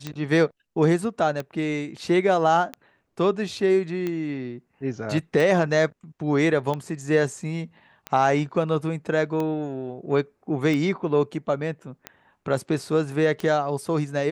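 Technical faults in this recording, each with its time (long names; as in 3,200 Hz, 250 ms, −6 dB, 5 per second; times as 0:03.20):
scratch tick 45 rpm −16 dBFS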